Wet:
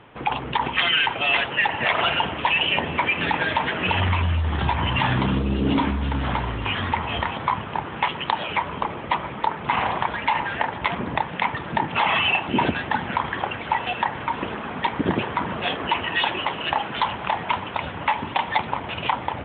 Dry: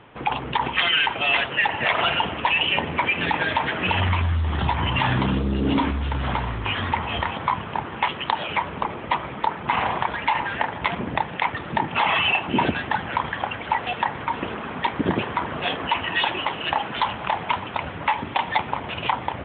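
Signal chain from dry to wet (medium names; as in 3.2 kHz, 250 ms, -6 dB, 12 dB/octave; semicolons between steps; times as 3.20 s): repeats whose band climbs or falls 405 ms, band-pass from 180 Hz, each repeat 1.4 oct, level -8 dB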